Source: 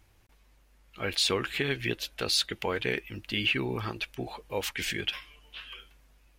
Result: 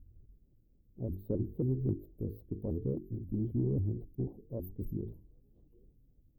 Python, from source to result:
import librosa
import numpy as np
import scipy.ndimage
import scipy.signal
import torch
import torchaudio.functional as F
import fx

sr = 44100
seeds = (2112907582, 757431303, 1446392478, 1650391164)

p1 = scipy.signal.sosfilt(scipy.signal.cheby2(4, 70, [1300.0, 9100.0], 'bandstop', fs=sr, output='sos'), x)
p2 = fx.peak_eq(p1, sr, hz=260.0, db=-7.0, octaves=2.2)
p3 = 10.0 ** (-32.5 / 20.0) * np.tanh(p2 / 10.0 ** (-32.5 / 20.0))
p4 = p2 + (p3 * librosa.db_to_amplitude(-8.5))
p5 = fx.hum_notches(p4, sr, base_hz=50, count=9)
p6 = fx.vibrato_shape(p5, sr, shape='saw_up', rate_hz=3.7, depth_cents=250.0)
y = p6 * librosa.db_to_amplitude(7.0)